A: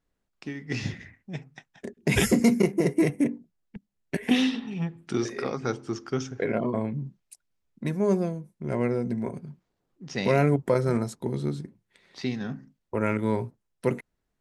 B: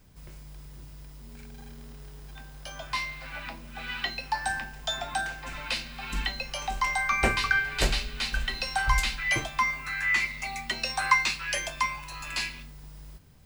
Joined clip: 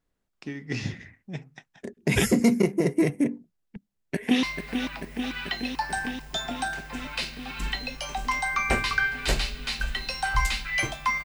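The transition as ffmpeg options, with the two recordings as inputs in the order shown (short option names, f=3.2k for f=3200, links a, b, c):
-filter_complex "[0:a]apad=whole_dur=11.24,atrim=end=11.24,atrim=end=4.432[a];[1:a]atrim=start=2.958:end=9.77[b];[a][b]acrossfade=d=0.004:c1=hsin:c2=hsin,asplit=2[c][d];[d]afade=t=in:st=3.94:d=0.01,afade=t=out:st=4.43:d=0.01,aecho=0:1:440|880|1320|1760|2200|2640|3080|3520|3960|4400|4840|5280:0.446684|0.357347|0.285877|0.228702|0.182962|0.146369|0.117095|0.0936763|0.0749411|0.0599529|0.0479623|0.0383698[e];[c][e]amix=inputs=2:normalize=0"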